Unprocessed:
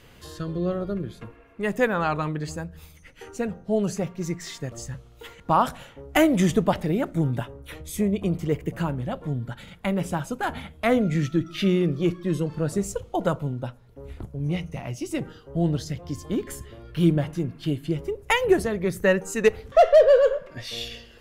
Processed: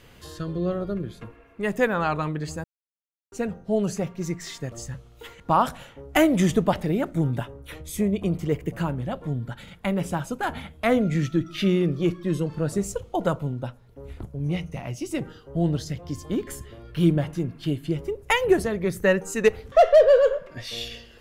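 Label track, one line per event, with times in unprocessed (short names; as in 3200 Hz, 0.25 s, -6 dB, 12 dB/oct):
2.640000	3.320000	mute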